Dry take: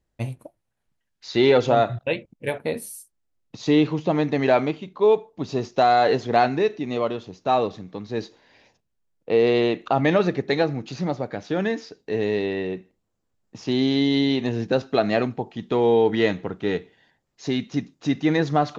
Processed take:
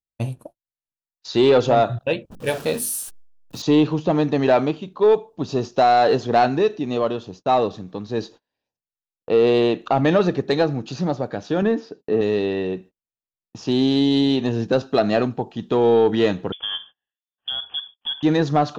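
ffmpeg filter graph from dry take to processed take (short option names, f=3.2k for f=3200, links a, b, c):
-filter_complex "[0:a]asettb=1/sr,asplit=3[a][b][c];[a]atrim=end=2.304[d];[b]atrim=start=2.3:end=3.62,asetpts=PTS-STARTPTS,afade=t=in:d=0.004:c=qsin,afade=t=out:st=1.316:d=0.004:c=qsin,aeval=exprs='val(0)+0.5*0.0133*sgn(val(0))':c=same,bandreject=f=50:t=h:w=6,bandreject=f=100:t=h:w=6,bandreject=f=150:t=h:w=6,bandreject=f=200:t=h:w=6,bandreject=f=250:t=h:w=6,bandreject=f=300:t=h:w=6,bandreject=f=350:t=h:w=6,bandreject=f=400:t=h:w=6,adynamicequalizer=threshold=0.00631:dfrequency=1700:dqfactor=0.7:tfrequency=1700:tqfactor=0.7:attack=5:release=100:ratio=0.375:range=3:mode=boostabove:tftype=highshelf[e];[c]atrim=start=3.616[f];[d][e]acrossfade=d=0.004:c1=hsin:c2=qsin[g];[g][f]acrossfade=d=0.004:c1=qsin:c2=hsin,asettb=1/sr,asplit=3[h][i][j];[h]atrim=end=11.624[k];[i]atrim=start=11.62:end=12.21,asetpts=PTS-STARTPTS,afade=t=in:d=0.004:c=qsin,afade=t=out:st=0.586:d=0.004:c=qsin,highpass=250,aemphasis=mode=reproduction:type=riaa[l];[j]atrim=start=12.206[m];[k][l]acrossfade=d=0.004:c1=hsin:c2=qsin[n];[n][m]acrossfade=d=0.004:c1=qsin:c2=hsin,asettb=1/sr,asplit=3[o][p][q];[o]atrim=end=16.524[r];[p]atrim=start=16.52:end=18.23,asetpts=PTS-STARTPTS,afade=t=in:d=0.004:c=qsin,afade=t=out:st=1.706:d=0.004:c=qsin,acompressor=threshold=-26dB:ratio=4:attack=3.2:release=140:knee=1:detection=peak,lowpass=f=3.1k:t=q:w=0.5098,lowpass=f=3.1k:t=q:w=0.6013,lowpass=f=3.1k:t=q:w=0.9,lowpass=f=3.1k:t=q:w=2.563,afreqshift=-3600[s];[q]atrim=start=18.226[t];[r][s]acrossfade=d=0.004:c1=hsin:c2=qsin[u];[u][t]acrossfade=d=0.004:c1=qsin:c2=hsin,agate=range=-30dB:threshold=-44dB:ratio=16:detection=peak,equalizer=f=2.1k:t=o:w=0.26:g=-12,acontrast=89,volume=-4dB"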